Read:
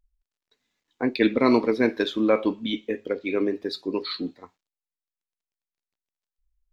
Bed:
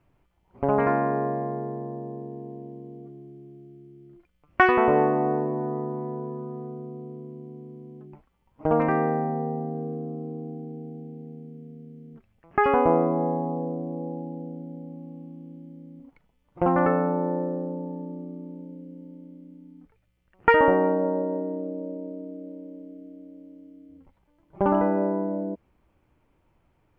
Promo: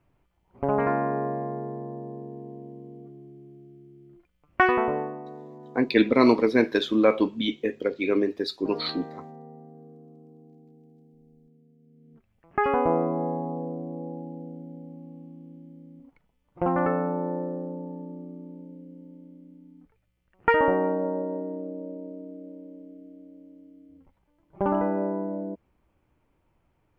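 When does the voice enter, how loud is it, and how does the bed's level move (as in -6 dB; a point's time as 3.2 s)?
4.75 s, +1.0 dB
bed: 4.74 s -2 dB
5.24 s -16.5 dB
11.78 s -16.5 dB
12.35 s -3 dB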